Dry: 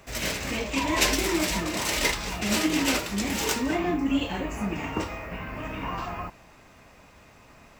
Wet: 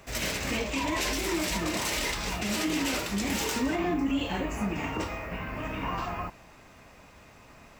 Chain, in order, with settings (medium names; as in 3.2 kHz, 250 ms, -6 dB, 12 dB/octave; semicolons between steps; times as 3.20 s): peak limiter -20 dBFS, peak gain reduction 11 dB